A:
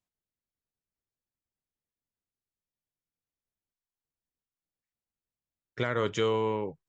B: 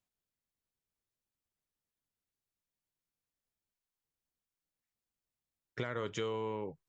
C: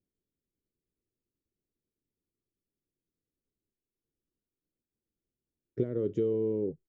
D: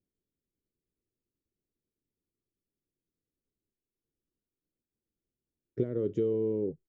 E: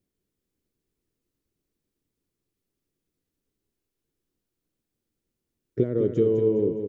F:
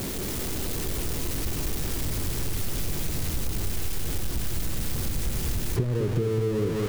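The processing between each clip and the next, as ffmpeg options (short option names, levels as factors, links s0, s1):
-af "acompressor=threshold=0.0158:ratio=3"
-af "firequalizer=gain_entry='entry(130,0);entry(360,7);entry(880,-25)':delay=0.05:min_phase=1,volume=2"
-af anull
-af "aecho=1:1:206|412|618|824|1030:0.447|0.201|0.0905|0.0407|0.0183,volume=2.24"
-af "aeval=exprs='val(0)+0.5*0.0447*sgn(val(0))':c=same,asubboost=boost=5:cutoff=130,acompressor=threshold=0.0562:ratio=6,volume=1.41"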